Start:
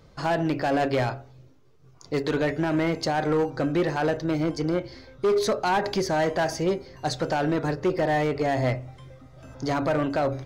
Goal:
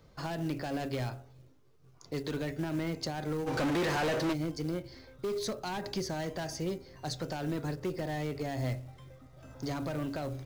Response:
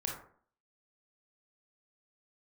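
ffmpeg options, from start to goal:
-filter_complex "[0:a]acrossover=split=280|3000[s0][s1][s2];[s1]acompressor=threshold=0.0178:ratio=2.5[s3];[s0][s3][s2]amix=inputs=3:normalize=0,acrusher=bits=6:mode=log:mix=0:aa=0.000001,asplit=3[s4][s5][s6];[s4]afade=t=out:st=3.46:d=0.02[s7];[s5]asplit=2[s8][s9];[s9]highpass=f=720:p=1,volume=50.1,asoftclip=type=tanh:threshold=0.133[s10];[s8][s10]amix=inputs=2:normalize=0,lowpass=f=3100:p=1,volume=0.501,afade=t=in:st=3.46:d=0.02,afade=t=out:st=4.32:d=0.02[s11];[s6]afade=t=in:st=4.32:d=0.02[s12];[s7][s11][s12]amix=inputs=3:normalize=0,volume=0.501"

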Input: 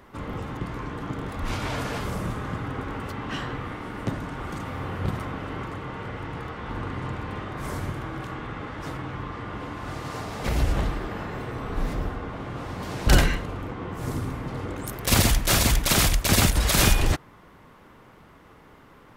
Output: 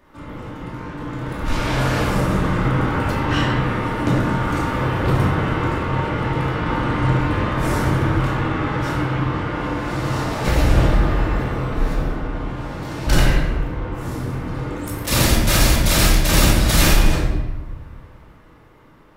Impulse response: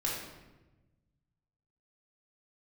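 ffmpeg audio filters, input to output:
-filter_complex "[0:a]dynaudnorm=f=250:g=13:m=4.47,asplit=2[s0][s1];[s1]asoftclip=type=tanh:threshold=0.133,volume=0.266[s2];[s0][s2]amix=inputs=2:normalize=0[s3];[1:a]atrim=start_sample=2205[s4];[s3][s4]afir=irnorm=-1:irlink=0,volume=0.422"

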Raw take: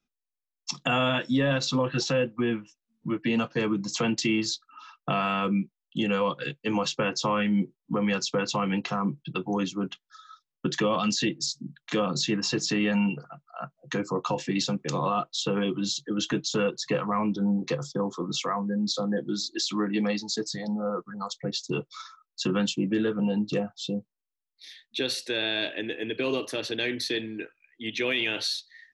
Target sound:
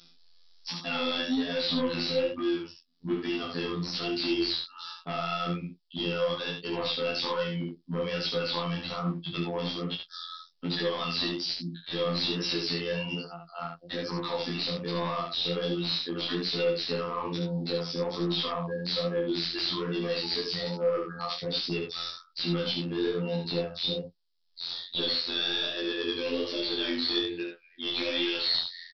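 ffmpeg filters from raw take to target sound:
-filter_complex "[0:a]acrossover=split=3100[s0][s1];[s1]acompressor=threshold=0.00501:ratio=4:attack=1:release=60[s2];[s0][s2]amix=inputs=2:normalize=0,alimiter=limit=0.0708:level=0:latency=1:release=61,acompressor=mode=upward:threshold=0.00316:ratio=2.5,aexciter=amount=3.5:drive=9.8:freq=3500,afftfilt=real='hypot(re,im)*cos(PI*b)':imag='0':win_size=2048:overlap=0.75,aresample=11025,asoftclip=type=hard:threshold=0.0398,aresample=44100,flanger=delay=17:depth=8:speed=1.2,aecho=1:1:29|72:0.376|0.562,volume=2.24"

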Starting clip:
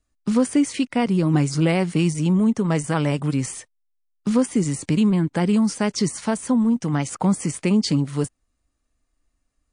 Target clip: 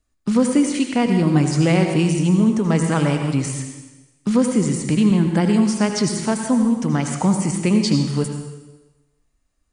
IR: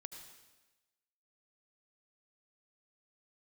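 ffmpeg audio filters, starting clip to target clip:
-filter_complex "[1:a]atrim=start_sample=2205[s0];[0:a][s0]afir=irnorm=-1:irlink=0,volume=2.37"

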